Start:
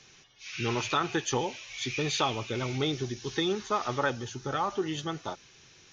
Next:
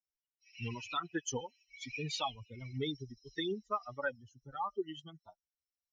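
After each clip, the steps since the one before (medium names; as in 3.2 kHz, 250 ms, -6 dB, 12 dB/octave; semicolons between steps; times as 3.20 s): expander on every frequency bin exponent 3; trim -2.5 dB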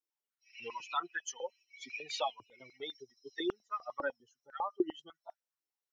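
step-sequenced high-pass 10 Hz 330–1700 Hz; trim -2.5 dB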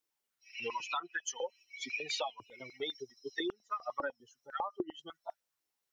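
compression 12:1, threshold -40 dBFS, peak gain reduction 16 dB; trim +7 dB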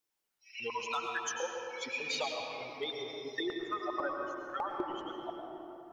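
hard clipper -26.5 dBFS, distortion -26 dB; reverberation RT60 3.4 s, pre-delay 95 ms, DRR 1 dB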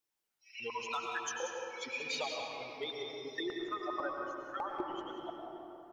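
delay 185 ms -9 dB; trim -2.5 dB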